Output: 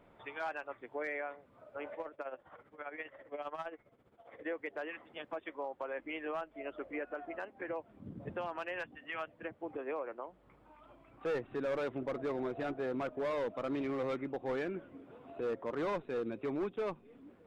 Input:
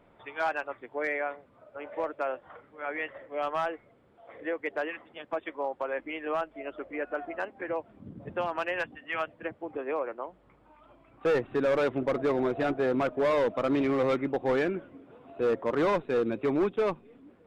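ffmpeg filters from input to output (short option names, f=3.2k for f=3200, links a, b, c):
-filter_complex "[0:a]alimiter=level_in=4.5dB:limit=-24dB:level=0:latency=1:release=321,volume=-4.5dB,asettb=1/sr,asplit=3[a][b][c];[a]atrim=end=1.944[d];[b]atrim=start=1.94:end=4.46,asetpts=PTS-STARTPTS,afade=t=in:d=0.004:c=qsin,afade=t=out:st=2.516:d=0.004:c=qsin,tremolo=f=15:d=0.72[e];[c]atrim=start=4.456[f];[d][e]acrossfade=d=0.004:c1=hsin:c2=qsin[g];[g][f]acrossfade=d=0.004:c1=qsin:c2=hsin,volume=-2dB"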